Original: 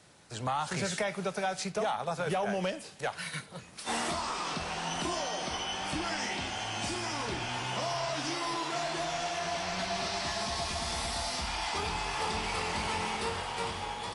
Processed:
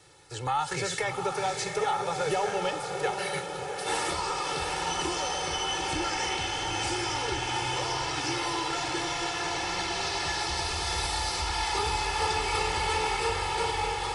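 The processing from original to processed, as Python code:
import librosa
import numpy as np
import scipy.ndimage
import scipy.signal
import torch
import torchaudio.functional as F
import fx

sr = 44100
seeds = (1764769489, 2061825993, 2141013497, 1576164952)

y = x + 0.96 * np.pad(x, (int(2.3 * sr / 1000.0), 0))[:len(x)]
y = fx.echo_diffused(y, sr, ms=725, feedback_pct=62, wet_db=-5.5)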